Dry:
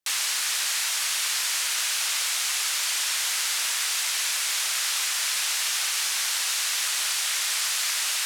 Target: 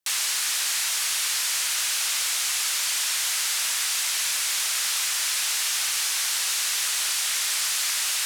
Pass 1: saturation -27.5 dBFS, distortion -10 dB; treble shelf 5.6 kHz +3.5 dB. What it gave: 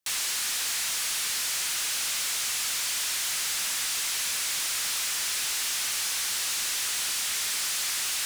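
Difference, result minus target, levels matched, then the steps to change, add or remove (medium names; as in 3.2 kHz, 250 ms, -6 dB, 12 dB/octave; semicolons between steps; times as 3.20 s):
saturation: distortion +12 dB
change: saturation -17.5 dBFS, distortion -22 dB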